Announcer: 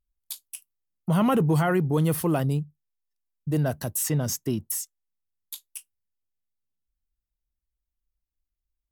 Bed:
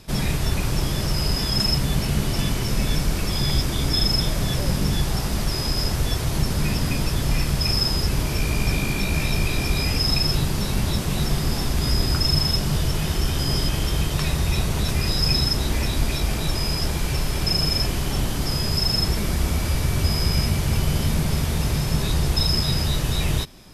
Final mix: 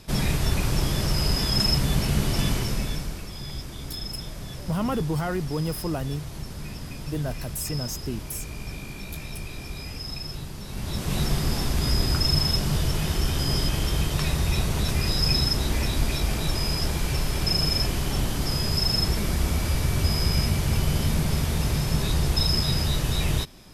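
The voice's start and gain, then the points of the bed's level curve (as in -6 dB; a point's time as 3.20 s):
3.60 s, -5.0 dB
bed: 2.55 s -1 dB
3.31 s -13.5 dB
10.64 s -13.5 dB
11.14 s -2 dB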